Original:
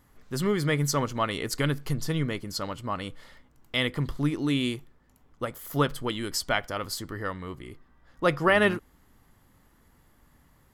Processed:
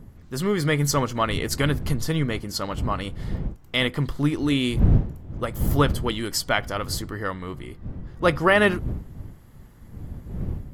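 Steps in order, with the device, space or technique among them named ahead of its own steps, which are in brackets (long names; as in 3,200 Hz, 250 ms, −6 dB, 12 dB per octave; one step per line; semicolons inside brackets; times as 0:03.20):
smartphone video outdoors (wind on the microphone 120 Hz −33 dBFS; automatic gain control gain up to 4 dB; AAC 64 kbit/s 48,000 Hz)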